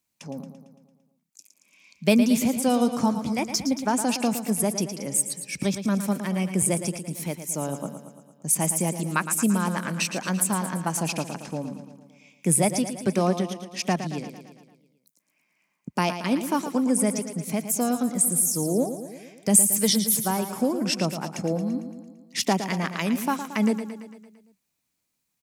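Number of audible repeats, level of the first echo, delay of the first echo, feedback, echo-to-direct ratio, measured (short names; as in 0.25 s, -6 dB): 6, -10.0 dB, 0.113 s, 59%, -8.0 dB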